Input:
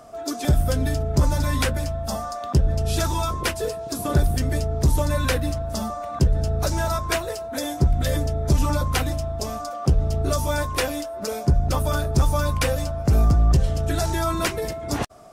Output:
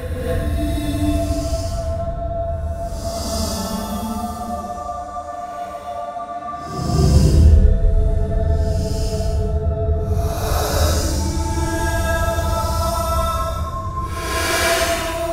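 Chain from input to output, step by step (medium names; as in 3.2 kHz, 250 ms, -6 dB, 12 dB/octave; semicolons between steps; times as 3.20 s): Paulstretch 8.2×, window 0.10 s, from 5.37 s; gated-style reverb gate 320 ms rising, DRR -7.5 dB; trim -4.5 dB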